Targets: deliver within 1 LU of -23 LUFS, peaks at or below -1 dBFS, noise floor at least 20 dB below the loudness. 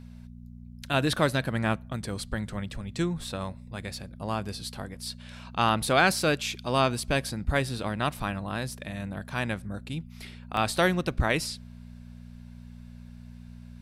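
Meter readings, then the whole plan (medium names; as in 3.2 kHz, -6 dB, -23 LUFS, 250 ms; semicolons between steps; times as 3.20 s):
dropouts 3; longest dropout 1.2 ms; hum 60 Hz; highest harmonic 240 Hz; hum level -43 dBFS; loudness -29.0 LUFS; peak level -8.0 dBFS; loudness target -23.0 LUFS
-> interpolate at 5.02/5.69/10.57 s, 1.2 ms; de-hum 60 Hz, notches 4; trim +6 dB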